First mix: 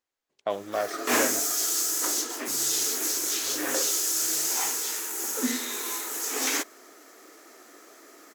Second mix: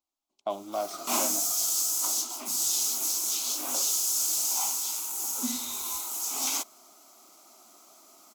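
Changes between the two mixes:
second voice +4.5 dB; background: remove resonant high-pass 300 Hz, resonance Q 3.7; master: add fixed phaser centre 470 Hz, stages 6

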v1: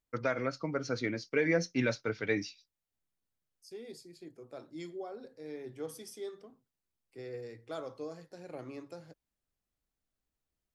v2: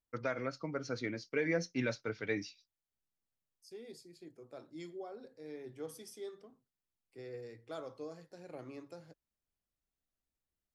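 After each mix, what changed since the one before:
first voice -4.5 dB; second voice -3.5 dB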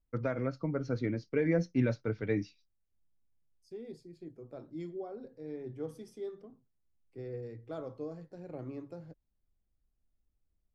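master: add tilt -3.5 dB/oct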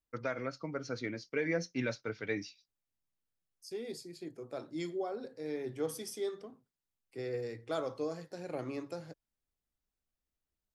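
second voice +8.5 dB; master: add tilt +3.5 dB/oct

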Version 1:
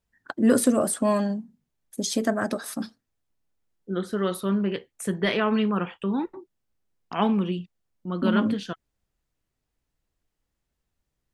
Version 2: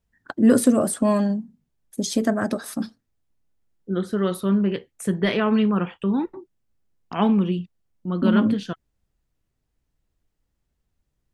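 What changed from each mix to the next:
master: add low shelf 320 Hz +6.5 dB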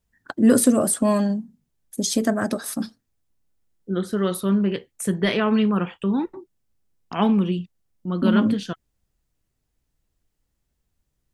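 master: add high shelf 4800 Hz +7 dB

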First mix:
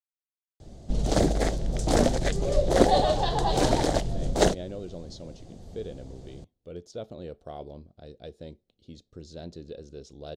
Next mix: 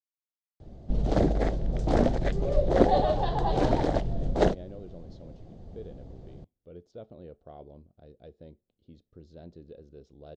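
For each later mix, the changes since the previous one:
speech -5.5 dB; master: add tape spacing loss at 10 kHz 26 dB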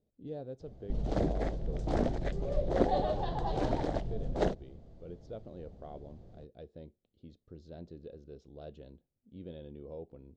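speech: entry -1.65 s; background -7.0 dB

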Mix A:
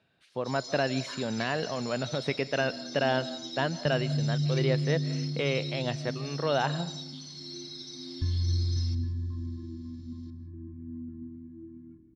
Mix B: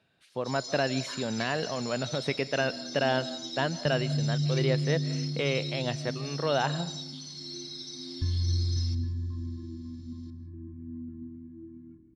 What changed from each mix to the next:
master: add high shelf 9500 Hz +12 dB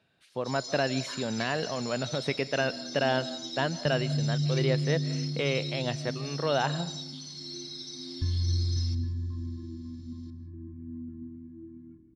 none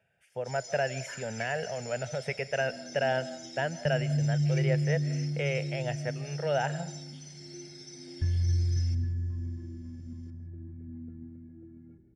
first sound +3.0 dB; second sound: add bell 550 Hz +13 dB 2.9 oct; master: add fixed phaser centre 1100 Hz, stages 6

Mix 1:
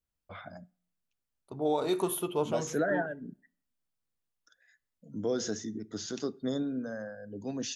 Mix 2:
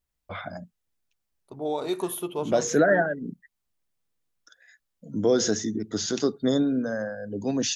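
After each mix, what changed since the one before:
first voice +9.5 dB; reverb: off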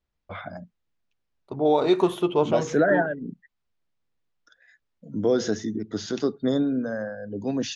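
second voice +9.0 dB; master: add air absorption 140 m

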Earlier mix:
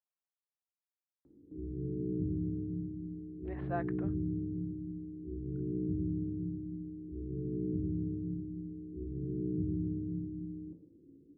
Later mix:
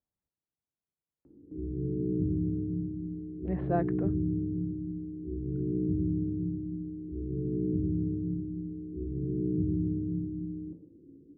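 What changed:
speech: remove HPF 900 Hz; background +5.0 dB

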